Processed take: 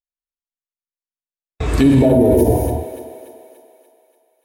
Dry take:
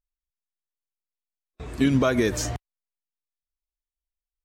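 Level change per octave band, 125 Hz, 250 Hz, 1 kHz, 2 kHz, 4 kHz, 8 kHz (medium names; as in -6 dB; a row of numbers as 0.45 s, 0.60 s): +11.5 dB, +10.0 dB, +8.0 dB, -0.5 dB, +0.5 dB, 0.0 dB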